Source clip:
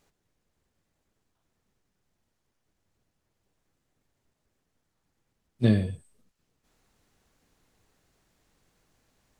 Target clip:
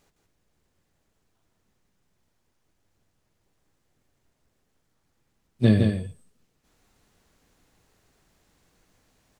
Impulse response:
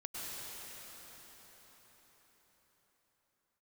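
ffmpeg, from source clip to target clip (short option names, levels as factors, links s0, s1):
-af "aecho=1:1:163:0.562,volume=1.41"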